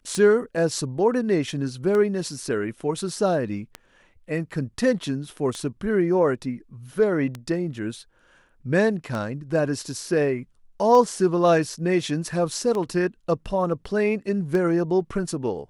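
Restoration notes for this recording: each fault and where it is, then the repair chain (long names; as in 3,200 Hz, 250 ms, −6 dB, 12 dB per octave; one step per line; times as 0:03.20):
scratch tick 33 1/3 rpm −16 dBFS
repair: click removal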